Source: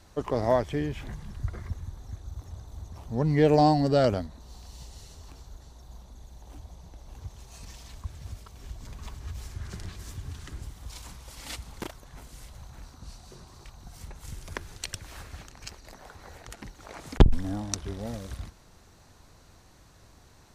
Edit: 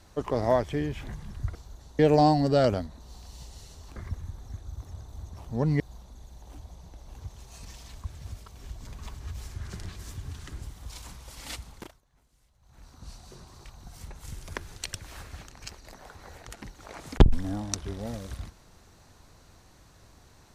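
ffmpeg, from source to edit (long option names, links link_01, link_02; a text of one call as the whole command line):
ffmpeg -i in.wav -filter_complex "[0:a]asplit=7[link_01][link_02][link_03][link_04][link_05][link_06][link_07];[link_01]atrim=end=1.552[link_08];[link_02]atrim=start=5.358:end=5.802[link_09];[link_03]atrim=start=3.388:end=5.362[link_10];[link_04]atrim=start=1.548:end=3.392[link_11];[link_05]atrim=start=5.798:end=12.02,asetpts=PTS-STARTPTS,afade=type=out:start_time=5.752:duration=0.47:silence=0.0891251[link_12];[link_06]atrim=start=12.02:end=12.61,asetpts=PTS-STARTPTS,volume=-21dB[link_13];[link_07]atrim=start=12.61,asetpts=PTS-STARTPTS,afade=type=in:duration=0.47:silence=0.0891251[link_14];[link_08][link_09]acrossfade=duration=0.004:curve1=hsin:curve2=hsin[link_15];[link_15][link_10]acrossfade=duration=0.004:curve1=hsin:curve2=hsin[link_16];[link_16][link_11]acrossfade=duration=0.004:curve1=hsin:curve2=hsin[link_17];[link_12][link_13][link_14]concat=n=3:v=0:a=1[link_18];[link_17][link_18]acrossfade=duration=0.004:curve1=hsin:curve2=hsin" out.wav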